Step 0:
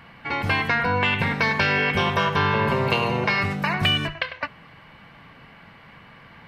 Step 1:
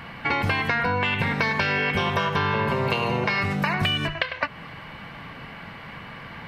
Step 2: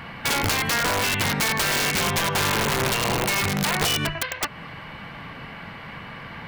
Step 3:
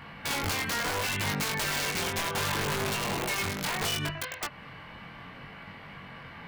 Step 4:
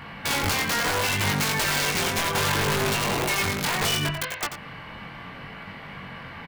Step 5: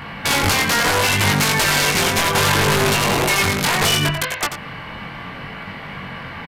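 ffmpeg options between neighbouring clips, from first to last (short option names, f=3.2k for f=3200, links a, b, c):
-af "acompressor=threshold=-29dB:ratio=6,volume=8dB"
-af "aeval=exprs='(mod(7.5*val(0)+1,2)-1)/7.5':c=same,volume=1.5dB"
-af "flanger=delay=20:depth=3.4:speed=0.7,volume=-4.5dB"
-af "aecho=1:1:89:0.316,volume=5.5dB"
-af "aresample=32000,aresample=44100,volume=7.5dB"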